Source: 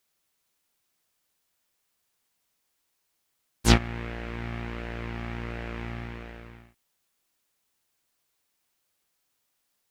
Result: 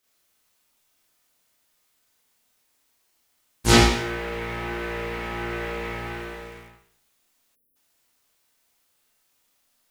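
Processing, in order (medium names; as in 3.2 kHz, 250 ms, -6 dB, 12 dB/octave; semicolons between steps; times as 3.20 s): Schroeder reverb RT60 0.6 s, combs from 25 ms, DRR -6.5 dB; spectral selection erased 7.55–7.76 s, 580–9800 Hz; bit-crushed delay 88 ms, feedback 35%, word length 7-bit, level -10 dB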